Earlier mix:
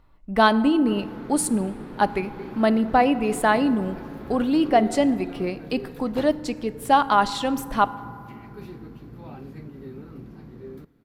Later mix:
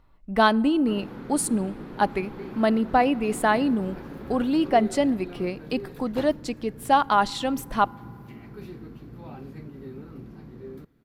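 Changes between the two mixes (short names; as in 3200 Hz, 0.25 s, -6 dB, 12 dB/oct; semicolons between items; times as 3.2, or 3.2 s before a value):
speech: send -11.0 dB; background: send -8.0 dB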